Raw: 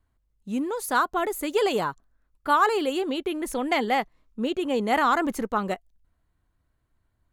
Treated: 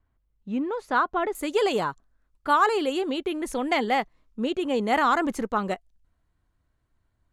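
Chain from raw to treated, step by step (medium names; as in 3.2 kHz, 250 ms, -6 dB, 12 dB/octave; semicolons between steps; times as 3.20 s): low-pass 3 kHz 12 dB/octave, from 1.35 s 9.8 kHz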